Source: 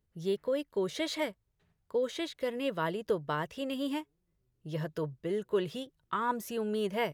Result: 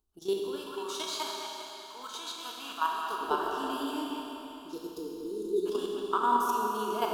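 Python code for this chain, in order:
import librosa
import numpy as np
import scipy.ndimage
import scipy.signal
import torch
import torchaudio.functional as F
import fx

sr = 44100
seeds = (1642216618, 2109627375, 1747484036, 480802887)

y = fx.spec_trails(x, sr, decay_s=0.38)
y = fx.peak_eq(y, sr, hz=140.0, db=-13.0, octaves=1.3)
y = fx.fixed_phaser(y, sr, hz=530.0, stages=6)
y = fx.echo_wet_lowpass(y, sr, ms=198, feedback_pct=49, hz=3100.0, wet_db=-5)
y = fx.level_steps(y, sr, step_db=11)
y = fx.low_shelf_res(y, sr, hz=730.0, db=-13.0, q=1.5, at=(0.56, 3.21))
y = fx.spec_erase(y, sr, start_s=4.62, length_s=1.04, low_hz=520.0, high_hz=3500.0)
y = fx.rev_schroeder(y, sr, rt60_s=3.2, comb_ms=29, drr_db=0.0)
y = y * librosa.db_to_amplitude(7.0)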